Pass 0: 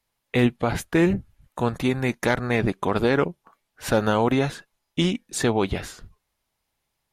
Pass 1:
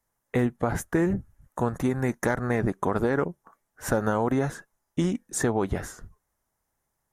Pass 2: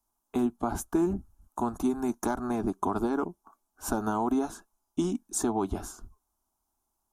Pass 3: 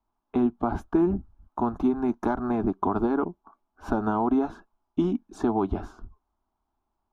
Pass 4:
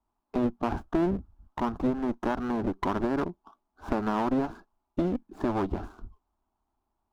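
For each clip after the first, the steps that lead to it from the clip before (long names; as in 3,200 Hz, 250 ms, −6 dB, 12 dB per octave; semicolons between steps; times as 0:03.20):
flat-topped bell 3,300 Hz −12.5 dB 1.3 octaves; downward compressor, threshold −20 dBFS, peak gain reduction 6 dB
phaser with its sweep stopped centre 510 Hz, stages 6
high-frequency loss of the air 330 metres; level +4.5 dB
running median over 15 samples; asymmetric clip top −32 dBFS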